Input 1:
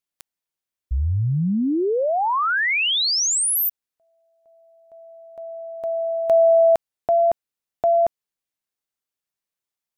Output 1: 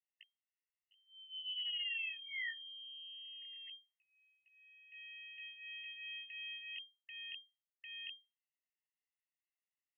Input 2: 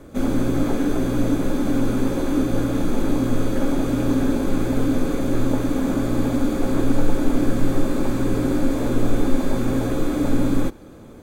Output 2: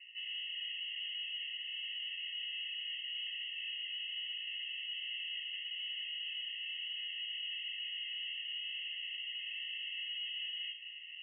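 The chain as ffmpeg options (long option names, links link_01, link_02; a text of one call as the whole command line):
ffmpeg -i in.wav -af "highpass=frequency=290:width=0.5412,highpass=frequency=290:width=1.3066,areverse,acompressor=threshold=-31dB:ratio=12:attack=4.5:release=324:knee=6:detection=rms,areverse,flanger=delay=16.5:depth=7.6:speed=0.2,aeval=exprs='(tanh(100*val(0)+0.35)-tanh(0.35))/100':channel_layout=same,asuperstop=centerf=800:order=8:qfactor=2,lowpass=frequency=2700:width_type=q:width=0.5098,lowpass=frequency=2700:width_type=q:width=0.6013,lowpass=frequency=2700:width_type=q:width=0.9,lowpass=frequency=2700:width_type=q:width=2.563,afreqshift=-3200,afftfilt=real='re*eq(mod(floor(b*sr/1024/1800),2),1)':imag='im*eq(mod(floor(b*sr/1024/1800),2),1)':win_size=1024:overlap=0.75,volume=2.5dB" out.wav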